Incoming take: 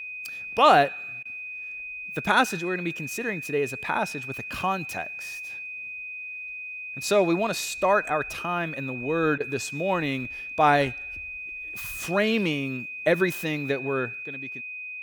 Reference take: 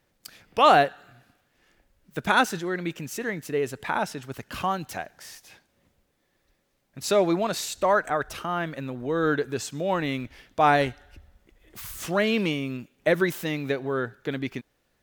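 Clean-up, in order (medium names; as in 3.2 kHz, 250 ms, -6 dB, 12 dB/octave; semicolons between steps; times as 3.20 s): band-stop 2.5 kHz, Q 30; interpolate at 1.23/9.38 s, 22 ms; gain correction +11.5 dB, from 14.23 s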